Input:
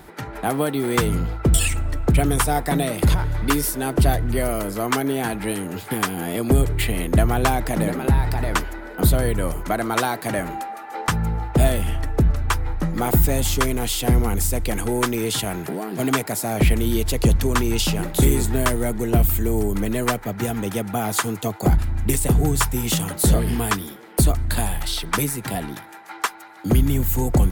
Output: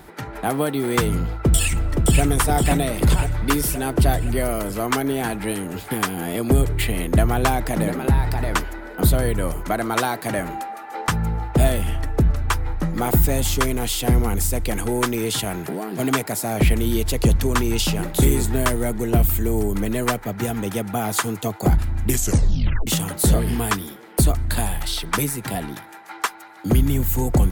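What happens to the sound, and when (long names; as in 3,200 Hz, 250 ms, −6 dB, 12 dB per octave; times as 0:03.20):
0:01.20–0:02.22: delay throw 520 ms, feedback 60%, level −4 dB
0:22.08: tape stop 0.79 s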